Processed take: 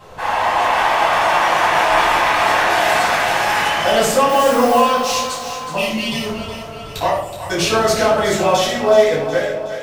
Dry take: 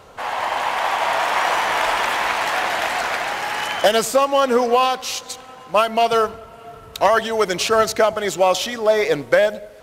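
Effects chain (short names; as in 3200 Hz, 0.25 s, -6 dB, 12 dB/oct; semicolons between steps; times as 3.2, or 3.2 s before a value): ending faded out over 1.57 s; 2.7–3.61 high shelf 5700 Hz +5.5 dB; 5.77–6.26 spectral gain 430–1800 Hz -28 dB; limiter -12 dBFS, peak gain reduction 8 dB; 4.29–4.79 requantised 6-bit, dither triangular; 7.09–7.5 brick-wall FIR band-stop 170–6700 Hz; split-band echo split 660 Hz, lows 0.207 s, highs 0.37 s, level -10 dB; shoebox room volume 1000 m³, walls furnished, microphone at 9.1 m; gain -4.5 dB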